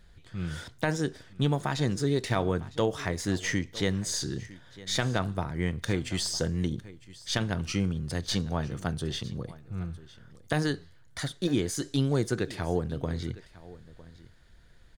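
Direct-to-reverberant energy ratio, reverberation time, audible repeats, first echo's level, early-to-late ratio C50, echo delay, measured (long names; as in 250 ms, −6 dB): no reverb audible, no reverb audible, 1, −19.0 dB, no reverb audible, 956 ms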